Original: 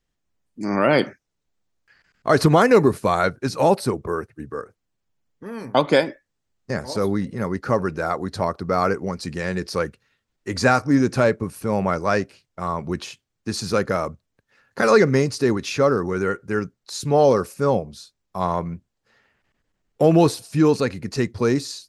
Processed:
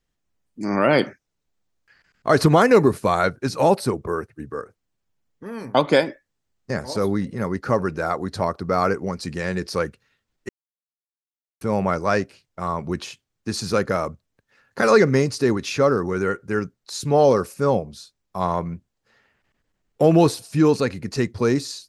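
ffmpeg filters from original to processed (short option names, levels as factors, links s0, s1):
-filter_complex "[0:a]asplit=3[s0][s1][s2];[s0]atrim=end=10.49,asetpts=PTS-STARTPTS,afade=t=out:st=10.486:d=0.004:c=hsin[s3];[s1]atrim=start=10.49:end=11.61,asetpts=PTS-STARTPTS,volume=0[s4];[s2]atrim=start=11.61,asetpts=PTS-STARTPTS,afade=t=in:d=0.004:c=hsin[s5];[s3][s4][s5]concat=n=3:v=0:a=1"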